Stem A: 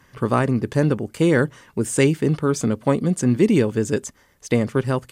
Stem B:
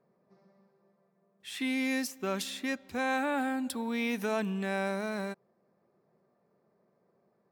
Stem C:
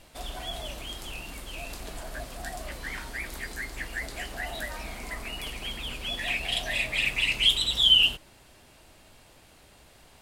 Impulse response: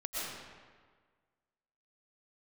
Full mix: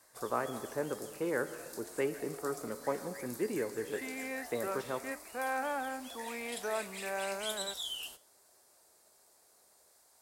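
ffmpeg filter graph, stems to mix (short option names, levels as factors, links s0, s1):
-filter_complex "[0:a]volume=0.422,asplit=2[s0][s1];[s1]volume=0.188[s2];[1:a]adelay=2400,volume=1.33[s3];[2:a]aexciter=amount=14.9:drive=6.2:freq=4400,highpass=42,volume=0.447[s4];[3:a]atrim=start_sample=2205[s5];[s2][s5]afir=irnorm=-1:irlink=0[s6];[s0][s3][s4][s6]amix=inputs=4:normalize=0,flanger=delay=8.9:depth=5.1:regen=84:speed=0.94:shape=triangular,acrossover=split=380 2100:gain=0.126 1 0.126[s7][s8][s9];[s7][s8][s9]amix=inputs=3:normalize=0"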